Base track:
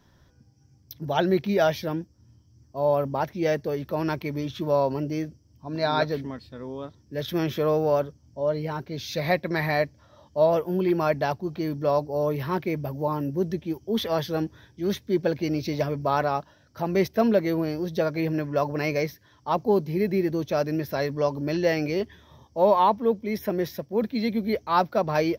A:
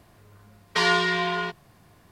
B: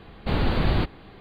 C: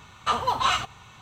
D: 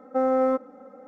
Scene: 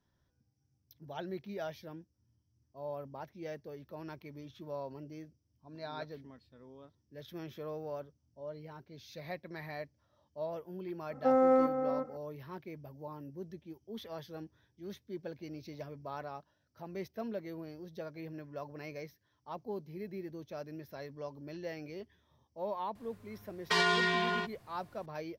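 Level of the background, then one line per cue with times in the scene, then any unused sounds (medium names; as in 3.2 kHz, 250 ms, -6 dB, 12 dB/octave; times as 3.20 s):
base track -18.5 dB
11.10 s: add D -3.5 dB + echo from a far wall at 62 m, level -8 dB
22.95 s: add A -5.5 dB + peak limiter -12.5 dBFS
not used: B, C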